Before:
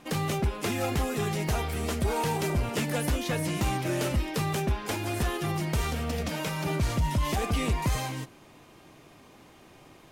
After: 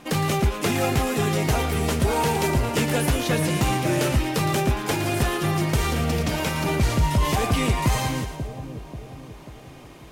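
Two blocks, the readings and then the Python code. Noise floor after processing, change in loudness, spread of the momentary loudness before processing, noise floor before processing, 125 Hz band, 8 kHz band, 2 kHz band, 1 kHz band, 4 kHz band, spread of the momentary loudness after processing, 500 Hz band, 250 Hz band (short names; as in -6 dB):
-43 dBFS, +6.5 dB, 3 LU, -54 dBFS, +6.5 dB, +6.5 dB, +7.0 dB, +7.0 dB, +6.5 dB, 13 LU, +6.5 dB, +6.5 dB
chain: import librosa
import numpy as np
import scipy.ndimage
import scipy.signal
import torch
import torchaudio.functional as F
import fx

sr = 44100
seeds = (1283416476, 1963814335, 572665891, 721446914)

y = fx.echo_split(x, sr, split_hz=750.0, low_ms=538, high_ms=114, feedback_pct=52, wet_db=-9)
y = y * 10.0 ** (6.0 / 20.0)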